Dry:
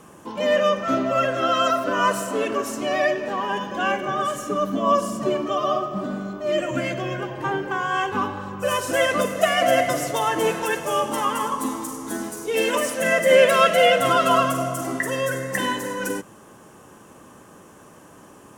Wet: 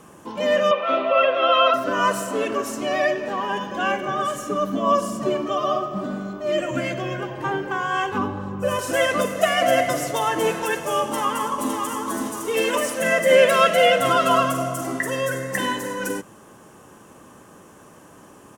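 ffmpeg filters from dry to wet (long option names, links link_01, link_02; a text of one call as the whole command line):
ffmpeg -i in.wav -filter_complex "[0:a]asettb=1/sr,asplit=3[link_01][link_02][link_03];[link_01]atrim=end=0.714[link_04];[link_02]atrim=start=0.71:end=1.74,asetpts=PTS-STARTPTS,afade=type=in:duration=0.004:curve=qsin,afade=type=out:start_time=1.026:duration=0.004:curve=qsin,highpass=420,equalizer=frequency=530:width_type=q:width=4:gain=7,equalizer=frequency=750:width_type=q:width=4:gain=3,equalizer=frequency=1100:width_type=q:width=4:gain=7,equalizer=frequency=1700:width_type=q:width=4:gain=-4,equalizer=frequency=2500:width_type=q:width=4:gain=9,equalizer=frequency=3500:width_type=q:width=4:gain=7,lowpass=frequency=3800:width=0.5412,lowpass=frequency=3800:width=1.3066[link_05];[link_03]atrim=start=1.736[link_06];[link_04][link_05]acrossfade=duration=0.004:curve1=hsin:curve2=qsin[link_07];[link_07][link_06]acrossfade=duration=0.004:curve1=qsin:curve2=hsin,asettb=1/sr,asplit=3[link_08][link_09][link_10];[link_08]atrim=end=8.184[link_11];[link_09]atrim=start=8.18:end=8.79,asetpts=PTS-STARTPTS,afade=type=in:duration=0.004:curve=qsin,afade=type=out:start_time=0.606:duration=0.004:curve=qsin,tiltshelf=frequency=650:gain=5.5[link_12];[link_10]atrim=start=8.786[link_13];[link_11][link_12]acrossfade=duration=0.004:curve1=hsin:curve2=qsin[link_14];[link_14][link_13]acrossfade=duration=0.004:curve1=qsin:curve2=hsin,asplit=2[link_15][link_16];[link_16]afade=type=in:start_time=11.02:duration=0.01,afade=type=out:start_time=12.03:duration=0.01,aecho=0:1:560|1120|1680|2240:0.595662|0.208482|0.0729686|0.025539[link_17];[link_15][link_17]amix=inputs=2:normalize=0" out.wav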